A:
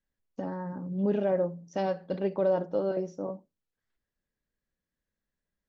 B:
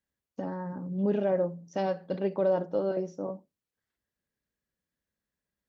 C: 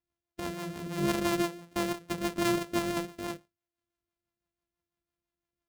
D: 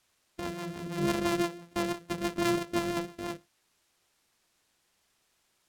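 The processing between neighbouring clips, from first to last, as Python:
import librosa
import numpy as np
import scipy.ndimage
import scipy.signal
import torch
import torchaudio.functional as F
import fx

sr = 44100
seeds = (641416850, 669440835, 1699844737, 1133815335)

y1 = scipy.signal.sosfilt(scipy.signal.butter(2, 60.0, 'highpass', fs=sr, output='sos'), x)
y2 = np.r_[np.sort(y1[:len(y1) // 128 * 128].reshape(-1, 128), axis=1).ravel(), y1[len(y1) // 128 * 128:]]
y2 = fx.rotary(y2, sr, hz=6.0)
y3 = fx.quant_dither(y2, sr, seeds[0], bits=12, dither='triangular')
y3 = np.interp(np.arange(len(y3)), np.arange(len(y3))[::2], y3[::2])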